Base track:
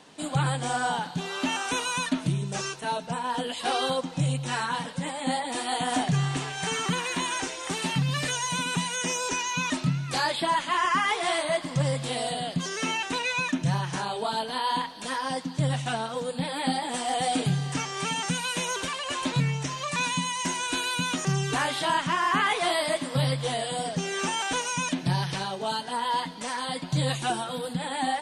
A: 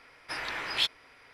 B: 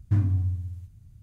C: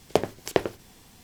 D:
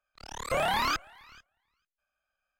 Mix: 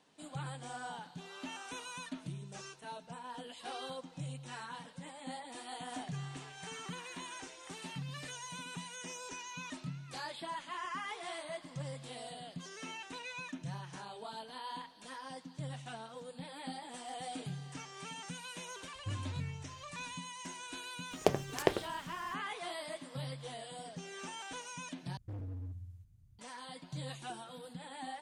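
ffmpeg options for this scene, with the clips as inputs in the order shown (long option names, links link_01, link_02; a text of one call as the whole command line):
ffmpeg -i bed.wav -i cue0.wav -i cue1.wav -i cue2.wav -filter_complex "[2:a]asplit=2[link_01][link_02];[0:a]volume=-16.5dB[link_03];[link_02]asoftclip=type=hard:threshold=-27.5dB[link_04];[link_03]asplit=2[link_05][link_06];[link_05]atrim=end=25.174[link_07];[link_04]atrim=end=1.22,asetpts=PTS-STARTPTS,volume=-13dB[link_08];[link_06]atrim=start=26.386[link_09];[link_01]atrim=end=1.22,asetpts=PTS-STARTPTS,volume=-17.5dB,afade=type=in:duration=0.004:curve=hsin,afade=type=out:start_time=1.216:duration=0.004:curve=hsin,adelay=18950[link_10];[3:a]atrim=end=1.23,asetpts=PTS-STARTPTS,volume=-6dB,afade=type=in:duration=0.004:curve=hsin,afade=type=out:start_time=1.226:duration=0.004:curve=hsin,adelay=21110[link_11];[link_07][link_08]acrossfade=duration=0.004:curve1=hsin:curve2=hsin[link_12];[link_12][link_09]acrossfade=duration=0.004:curve1=hsin:curve2=hsin[link_13];[link_13][link_10][link_11]amix=inputs=3:normalize=0" out.wav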